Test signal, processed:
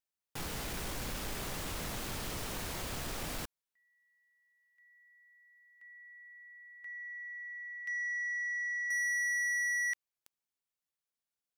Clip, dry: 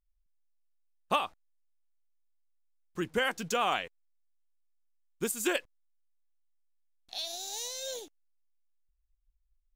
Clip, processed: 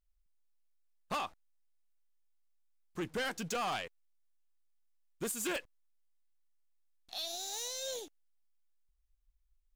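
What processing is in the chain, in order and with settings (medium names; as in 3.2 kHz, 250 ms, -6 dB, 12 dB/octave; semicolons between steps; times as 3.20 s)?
saturation -31.5 dBFS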